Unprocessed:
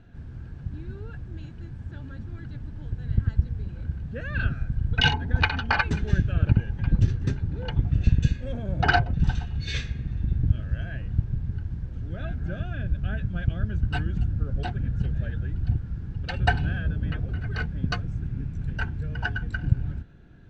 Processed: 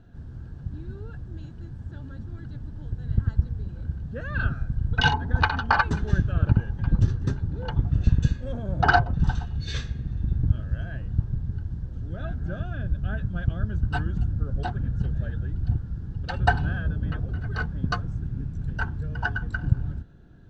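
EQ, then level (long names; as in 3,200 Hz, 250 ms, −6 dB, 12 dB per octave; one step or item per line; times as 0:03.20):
parametric band 2,300 Hz −10 dB 0.65 octaves
dynamic equaliser 1,100 Hz, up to +8 dB, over −48 dBFS, Q 1.4
0.0 dB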